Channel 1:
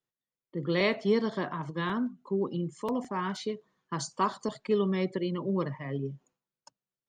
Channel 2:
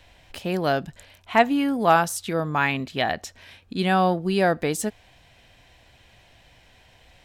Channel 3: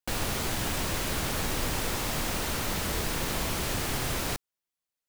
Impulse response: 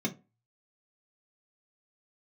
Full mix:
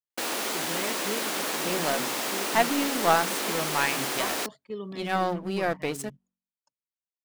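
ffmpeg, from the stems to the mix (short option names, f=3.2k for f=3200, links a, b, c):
-filter_complex "[0:a]volume=-9dB,asplit=2[a][b];[1:a]aeval=exprs='sgn(val(0))*max(abs(val(0))-0.0188,0)':c=same,bandreject=f=46.23:t=h:w=4,bandreject=f=92.46:t=h:w=4,bandreject=f=138.69:t=h:w=4,bandreject=f=184.92:t=h:w=4,bandreject=f=231.15:t=h:w=4,bandreject=f=277.38:t=h:w=4,aeval=exprs='0.531*(cos(1*acos(clip(val(0)/0.531,-1,1)))-cos(1*PI/2))+0.0422*(cos(6*acos(clip(val(0)/0.531,-1,1)))-cos(6*PI/2))':c=same,adelay=1200,volume=-2.5dB[c];[2:a]highpass=f=260:w=0.5412,highpass=f=260:w=1.3066,equalizer=f=16k:w=1.5:g=-2.5,adelay=100,volume=2.5dB[d];[b]apad=whole_len=372556[e];[c][e]sidechaincompress=threshold=-37dB:ratio=8:attack=16:release=344[f];[a][f][d]amix=inputs=3:normalize=0,agate=range=-9dB:threshold=-40dB:ratio=16:detection=peak,lowshelf=f=88:g=-6"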